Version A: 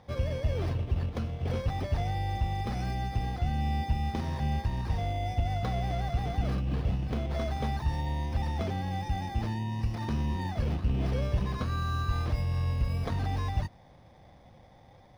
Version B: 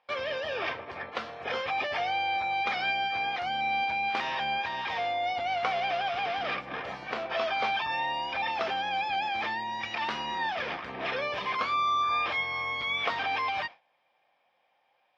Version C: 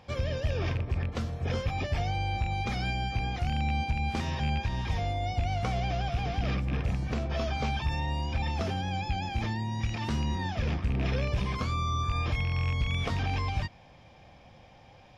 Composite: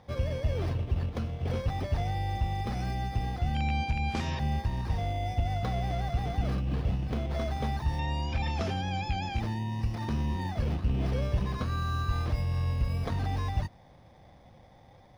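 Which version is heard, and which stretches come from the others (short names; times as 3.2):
A
3.55–4.39 from C
7.99–9.4 from C
not used: B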